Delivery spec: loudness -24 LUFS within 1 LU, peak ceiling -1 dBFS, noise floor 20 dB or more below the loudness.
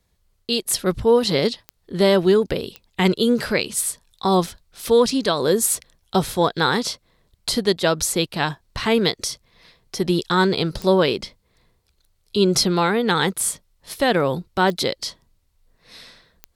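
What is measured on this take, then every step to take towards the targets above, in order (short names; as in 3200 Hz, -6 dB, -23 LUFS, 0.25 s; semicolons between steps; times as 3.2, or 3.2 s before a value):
clicks 5; loudness -20.5 LUFS; peak -5.5 dBFS; loudness target -24.0 LUFS
-> de-click; gain -3.5 dB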